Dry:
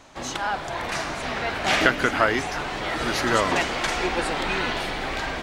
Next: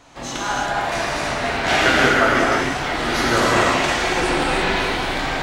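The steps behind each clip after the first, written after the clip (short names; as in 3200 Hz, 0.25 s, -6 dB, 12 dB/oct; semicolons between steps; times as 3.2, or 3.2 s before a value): non-linear reverb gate 0.37 s flat, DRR -5.5 dB; gain -1 dB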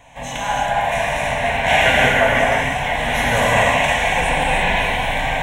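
fixed phaser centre 1300 Hz, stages 6; gain +5 dB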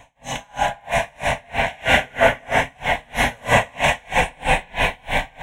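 dB-linear tremolo 3.1 Hz, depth 34 dB; gain +3 dB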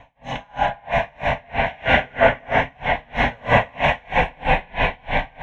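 air absorption 270 m; gain +1.5 dB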